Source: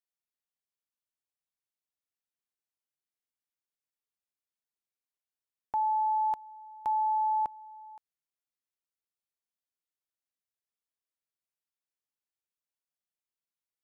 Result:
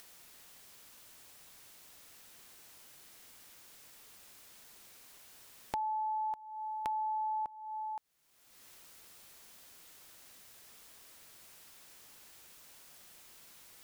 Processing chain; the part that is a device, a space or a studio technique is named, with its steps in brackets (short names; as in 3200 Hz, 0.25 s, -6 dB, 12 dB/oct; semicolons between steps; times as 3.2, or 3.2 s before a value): upward and downward compression (upward compressor, threshold -38 dBFS; compressor 4:1, threshold -42 dBFS, peak gain reduction 12.5 dB); gain +5.5 dB